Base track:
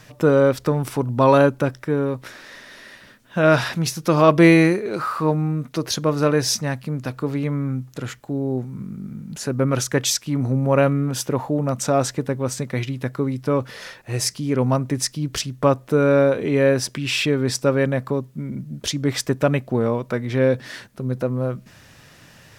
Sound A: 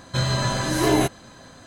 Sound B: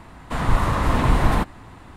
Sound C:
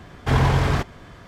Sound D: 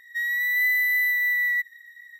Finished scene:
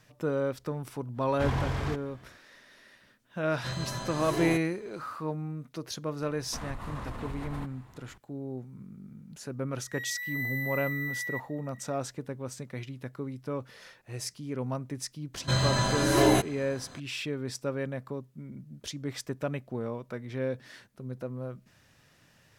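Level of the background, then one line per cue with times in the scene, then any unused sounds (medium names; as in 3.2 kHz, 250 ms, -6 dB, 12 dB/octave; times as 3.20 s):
base track -14 dB
1.13 s: add C -11.5 dB, fades 0.10 s
3.50 s: add A -13 dB
6.22 s: add B -13 dB + compression 10:1, threshold -21 dBFS
9.78 s: add D -12.5 dB
15.34 s: add A -3 dB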